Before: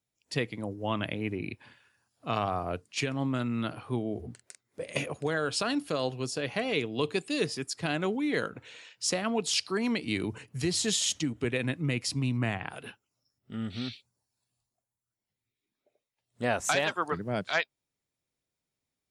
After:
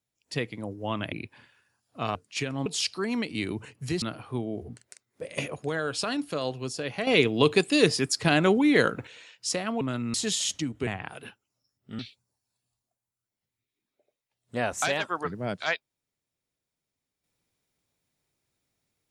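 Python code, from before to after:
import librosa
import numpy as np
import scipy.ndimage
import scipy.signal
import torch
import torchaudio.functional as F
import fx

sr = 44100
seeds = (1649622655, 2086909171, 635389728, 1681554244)

y = fx.edit(x, sr, fx.cut(start_s=1.12, length_s=0.28),
    fx.cut(start_s=2.43, length_s=0.33),
    fx.swap(start_s=3.27, length_s=0.33, other_s=9.39, other_length_s=1.36),
    fx.clip_gain(start_s=6.65, length_s=2.0, db=8.5),
    fx.cut(start_s=11.48, length_s=1.0),
    fx.cut(start_s=13.6, length_s=0.26), tone=tone)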